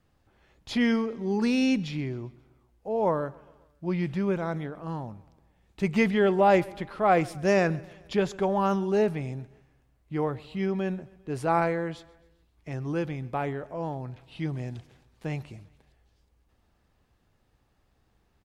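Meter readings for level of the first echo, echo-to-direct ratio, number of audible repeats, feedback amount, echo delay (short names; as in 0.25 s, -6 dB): -23.0 dB, -21.5 dB, 3, 54%, 0.133 s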